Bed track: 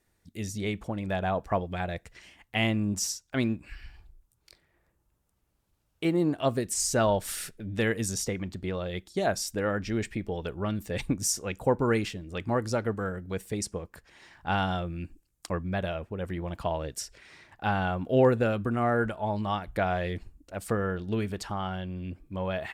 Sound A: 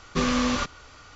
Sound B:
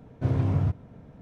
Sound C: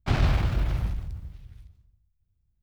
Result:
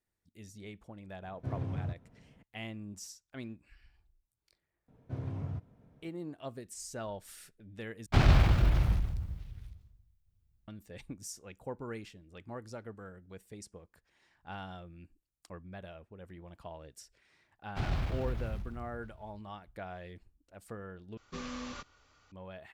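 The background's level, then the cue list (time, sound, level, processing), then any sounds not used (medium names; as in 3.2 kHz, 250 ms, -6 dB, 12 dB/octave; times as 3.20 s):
bed track -16 dB
1.22 s: add B -12 dB
4.88 s: add B -13.5 dB
8.06 s: replace with C
17.69 s: add C -10.5 dB, fades 0.10 s
21.17 s: replace with A -17.5 dB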